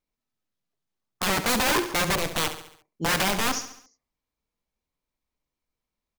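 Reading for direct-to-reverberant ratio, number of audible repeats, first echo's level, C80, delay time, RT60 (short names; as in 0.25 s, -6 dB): none, 4, -11.0 dB, none, 69 ms, none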